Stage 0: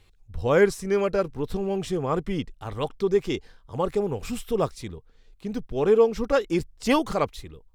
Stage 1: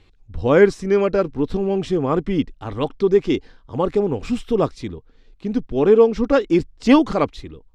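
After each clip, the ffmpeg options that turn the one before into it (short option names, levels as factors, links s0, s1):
-af "lowpass=5300,equalizer=f=280:t=o:w=0.67:g=8,volume=1.58"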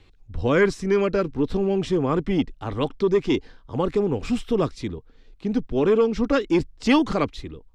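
-filter_complex "[0:a]acrossover=split=420|1200[s0][s1][s2];[s0]asoftclip=type=tanh:threshold=0.168[s3];[s1]acompressor=threshold=0.0447:ratio=6[s4];[s3][s4][s2]amix=inputs=3:normalize=0"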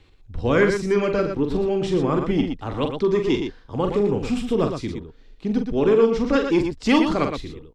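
-af "aecho=1:1:43.73|116.6:0.447|0.447"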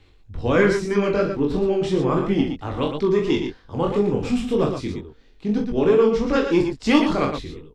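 -af "flanger=delay=20:depth=4:speed=3,volume=1.5"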